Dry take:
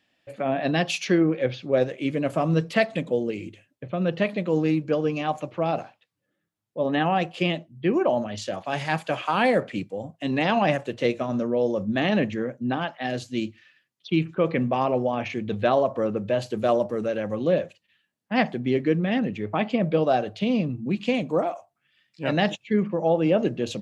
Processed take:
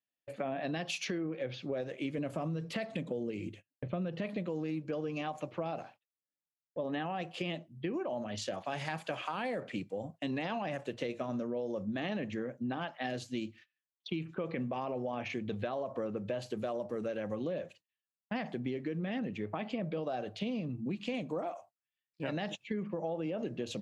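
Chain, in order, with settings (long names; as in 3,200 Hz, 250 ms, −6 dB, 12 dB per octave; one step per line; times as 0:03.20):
high-pass filter 68 Hz 6 dB per octave
noise gate −47 dBFS, range −25 dB
0:02.18–0:04.47: low-shelf EQ 280 Hz +5.5 dB
brickwall limiter −16.5 dBFS, peak gain reduction 8.5 dB
downward compressor, threshold −29 dBFS, peak gain reduction 9 dB
level −4 dB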